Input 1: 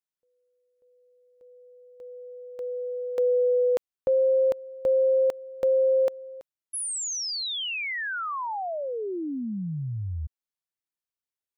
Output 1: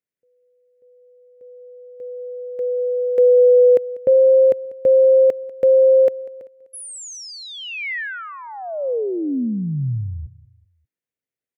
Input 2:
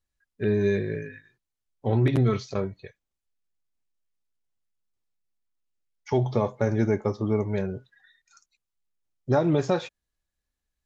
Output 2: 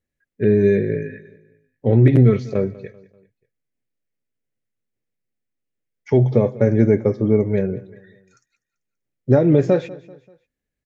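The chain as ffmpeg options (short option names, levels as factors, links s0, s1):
-filter_complex "[0:a]equalizer=f=125:t=o:w=1:g=11,equalizer=f=250:t=o:w=1:g=9,equalizer=f=500:t=o:w=1:g=12,equalizer=f=1000:t=o:w=1:g=-6,equalizer=f=2000:t=o:w=1:g=10,equalizer=f=4000:t=o:w=1:g=-3,asplit=2[s0][s1];[s1]aecho=0:1:194|388|582:0.1|0.044|0.0194[s2];[s0][s2]amix=inputs=2:normalize=0,volume=0.668"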